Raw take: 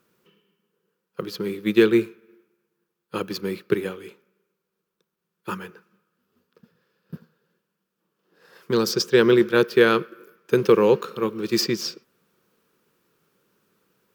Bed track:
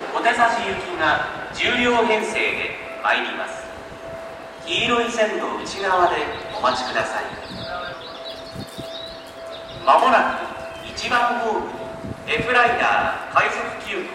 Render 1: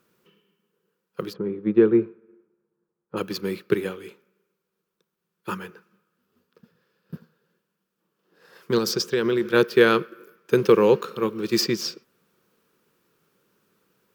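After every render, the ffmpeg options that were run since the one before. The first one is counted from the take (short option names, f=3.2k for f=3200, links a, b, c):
-filter_complex "[0:a]asplit=3[a][b][c];[a]afade=t=out:st=1.32:d=0.02[d];[b]lowpass=1k,afade=t=in:st=1.32:d=0.02,afade=t=out:st=3.16:d=0.02[e];[c]afade=t=in:st=3.16:d=0.02[f];[d][e][f]amix=inputs=3:normalize=0,asettb=1/sr,asplit=3[g][h][i];[g]atrim=end=8.784[j];[h]atrim=start=8.78:end=9.45,asetpts=PTS-STARTPTS,afade=t=in:d=0.004:c=qsin,afade=t=out:st=0.666:d=0.004:c=qsin,acompressor=threshold=-19dB:ratio=4:attack=3.2:release=140:knee=1:detection=peak[k];[i]atrim=start=9.446[l];[j][k]acrossfade=d=0.004:c1=hsin:c2=qsin[m];[m][l]acrossfade=d=0.004:c1=qsin:c2=hsin"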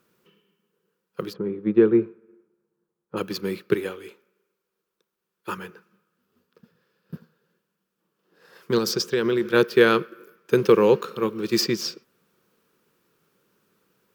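-filter_complex "[0:a]asettb=1/sr,asplit=3[a][b][c];[a]atrim=end=3.764[d];[b]atrim=start=3.76:end=5.58,asetpts=PTS-STARTPTS,afade=t=in:d=0.004:c=qsin,afade=t=out:st=1.816:d=0.004:c=qsin,equalizer=f=160:t=o:w=0.77:g=-9.5[e];[c]atrim=start=5.576[f];[d][e]acrossfade=d=0.004:c1=hsin:c2=qsin[g];[g][f]acrossfade=d=0.004:c1=qsin:c2=hsin"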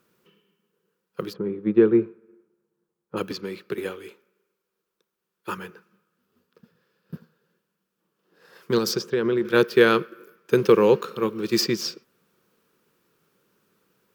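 -filter_complex "[0:a]asettb=1/sr,asplit=3[a][b][c];[a]atrim=end=3.314[d];[b]atrim=start=3.31:end=3.78,asetpts=PTS-STARTPTS,afade=t=in:d=0.004:c=qsin,afade=t=out:st=0.466:d=0.004:c=qsin,acrossover=split=360|7800[e][f][g];[e]acompressor=threshold=-36dB:ratio=4[h];[f]acompressor=threshold=-32dB:ratio=4[i];[g]acompressor=threshold=-59dB:ratio=4[j];[h][i][j]amix=inputs=3:normalize=0[k];[c]atrim=start=3.776[l];[d][k]acrossfade=d=0.004:c1=hsin:c2=qsin[m];[m][l]acrossfade=d=0.004:c1=qsin:c2=hsin,asettb=1/sr,asplit=3[n][o][p];[n]atrim=end=8.994[q];[o]atrim=start=8.99:end=9.45,asetpts=PTS-STARTPTS,afade=t=in:d=0.004:c=qsin,afade=t=out:st=0.456:d=0.004:c=qsin,highshelf=f=2.9k:g=-11[r];[p]atrim=start=9.446[s];[q][r]acrossfade=d=0.004:c1=hsin:c2=qsin[t];[t][s]acrossfade=d=0.004:c1=qsin:c2=hsin"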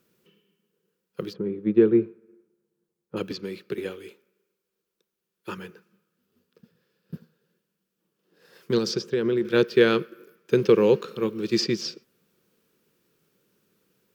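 -filter_complex "[0:a]acrossover=split=6500[a][b];[b]acompressor=threshold=-57dB:ratio=4:attack=1:release=60[c];[a][c]amix=inputs=2:normalize=0,equalizer=f=1.1k:w=1:g=-7.5"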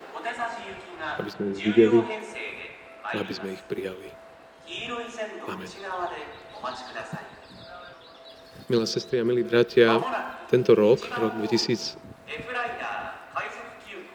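-filter_complex "[1:a]volume=-14dB[a];[0:a][a]amix=inputs=2:normalize=0"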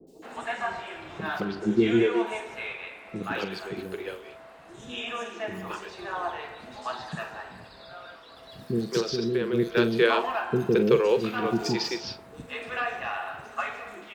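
-filter_complex "[0:a]asplit=2[a][b];[b]adelay=43,volume=-12dB[c];[a][c]amix=inputs=2:normalize=0,acrossover=split=380|5400[d][e][f];[f]adelay=70[g];[e]adelay=220[h];[d][h][g]amix=inputs=3:normalize=0"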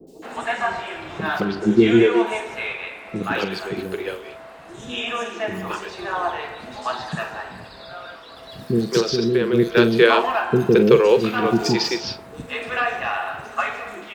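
-af "volume=7.5dB,alimiter=limit=-2dB:level=0:latency=1"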